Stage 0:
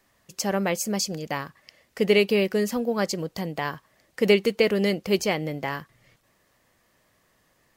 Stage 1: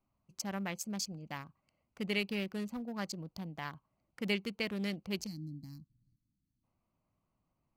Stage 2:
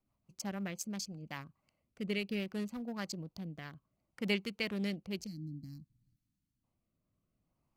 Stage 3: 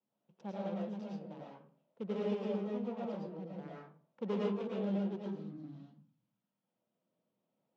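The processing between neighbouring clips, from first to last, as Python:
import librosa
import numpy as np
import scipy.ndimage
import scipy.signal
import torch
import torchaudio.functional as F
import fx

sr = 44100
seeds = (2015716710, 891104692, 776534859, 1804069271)

y1 = fx.wiener(x, sr, points=25)
y1 = fx.spec_box(y1, sr, start_s=5.26, length_s=1.37, low_hz=340.0, high_hz=4000.0, gain_db=-28)
y1 = fx.peak_eq(y1, sr, hz=470.0, db=-12.5, octaves=1.0)
y1 = y1 * librosa.db_to_amplitude(-9.0)
y2 = fx.rotary_switch(y1, sr, hz=6.0, then_hz=0.6, switch_at_s=0.99)
y2 = y2 * librosa.db_to_amplitude(1.0)
y3 = scipy.ndimage.median_filter(y2, 41, mode='constant')
y3 = fx.cabinet(y3, sr, low_hz=180.0, low_slope=24, high_hz=5300.0, hz=(290.0, 490.0, 900.0, 1900.0, 3200.0, 4600.0), db=(-6, 8, 8, -4, 4, -5))
y3 = fx.rev_freeverb(y3, sr, rt60_s=0.46, hf_ratio=0.55, predelay_ms=70, drr_db=-4.5)
y3 = y3 * librosa.db_to_amplitude(-1.5)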